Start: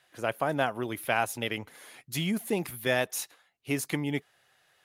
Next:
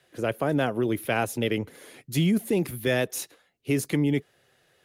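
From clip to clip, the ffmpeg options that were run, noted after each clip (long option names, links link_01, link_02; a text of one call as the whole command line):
ffmpeg -i in.wav -filter_complex "[0:a]lowshelf=frequency=610:width_type=q:width=1.5:gain=8,acrossover=split=120|940|5700[link_01][link_02][link_03][link_04];[link_02]alimiter=limit=-18.5dB:level=0:latency=1[link_05];[link_01][link_05][link_03][link_04]amix=inputs=4:normalize=0,volume=1dB" out.wav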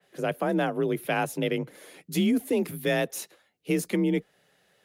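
ffmpeg -i in.wav -af "afreqshift=37,adynamicequalizer=threshold=0.00794:dfrequency=2800:dqfactor=0.7:tfrequency=2800:tqfactor=0.7:attack=5:release=100:ratio=0.375:range=2:mode=cutabove:tftype=highshelf,volume=-1dB" out.wav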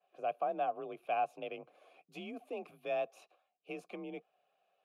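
ffmpeg -i in.wav -filter_complex "[0:a]asplit=3[link_01][link_02][link_03];[link_01]bandpass=frequency=730:width_type=q:width=8,volume=0dB[link_04];[link_02]bandpass=frequency=1090:width_type=q:width=8,volume=-6dB[link_05];[link_03]bandpass=frequency=2440:width_type=q:width=8,volume=-9dB[link_06];[link_04][link_05][link_06]amix=inputs=3:normalize=0" out.wav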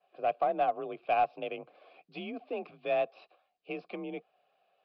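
ffmpeg -i in.wav -af "aeval=exprs='0.075*(cos(1*acos(clip(val(0)/0.075,-1,1)))-cos(1*PI/2))+0.00531*(cos(2*acos(clip(val(0)/0.075,-1,1)))-cos(2*PI/2))+0.00119*(cos(4*acos(clip(val(0)/0.075,-1,1)))-cos(4*PI/2))+0.00133*(cos(7*acos(clip(val(0)/0.075,-1,1)))-cos(7*PI/2))':channel_layout=same,aresample=11025,aresample=44100,volume=6dB" out.wav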